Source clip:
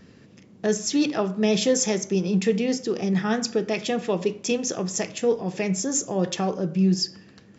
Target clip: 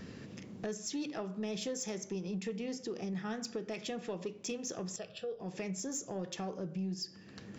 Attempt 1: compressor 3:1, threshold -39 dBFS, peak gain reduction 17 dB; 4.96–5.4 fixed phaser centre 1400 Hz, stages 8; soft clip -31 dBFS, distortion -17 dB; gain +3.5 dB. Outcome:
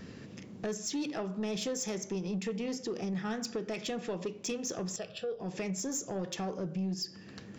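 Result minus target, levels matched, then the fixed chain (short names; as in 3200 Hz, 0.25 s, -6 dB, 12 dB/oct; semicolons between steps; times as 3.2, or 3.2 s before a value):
compressor: peak gain reduction -4.5 dB
compressor 3:1, threshold -45.5 dBFS, peak gain reduction 21 dB; 4.96–5.4 fixed phaser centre 1400 Hz, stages 8; soft clip -31 dBFS, distortion -24 dB; gain +3.5 dB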